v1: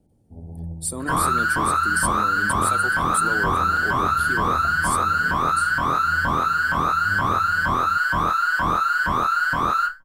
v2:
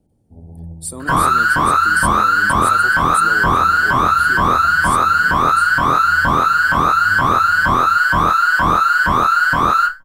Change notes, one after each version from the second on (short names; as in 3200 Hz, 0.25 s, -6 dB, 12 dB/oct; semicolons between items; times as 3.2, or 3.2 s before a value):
second sound +7.0 dB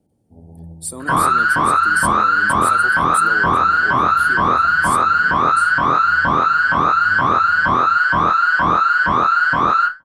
second sound: add air absorption 140 m; master: add HPF 140 Hz 6 dB/oct